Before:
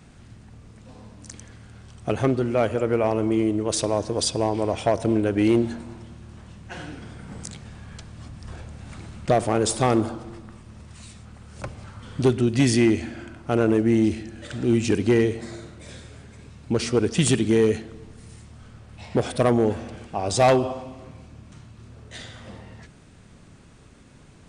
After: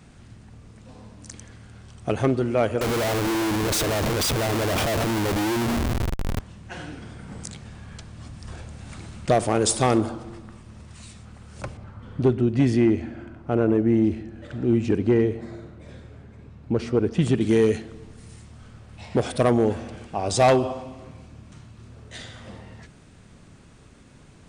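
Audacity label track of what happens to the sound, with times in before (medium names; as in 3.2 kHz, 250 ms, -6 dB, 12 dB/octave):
2.810000	6.400000	Schmitt trigger flips at -36.5 dBFS
8.250000	9.980000	treble shelf 3.5 kHz +4 dB
11.770000	17.410000	low-pass 1.1 kHz 6 dB/octave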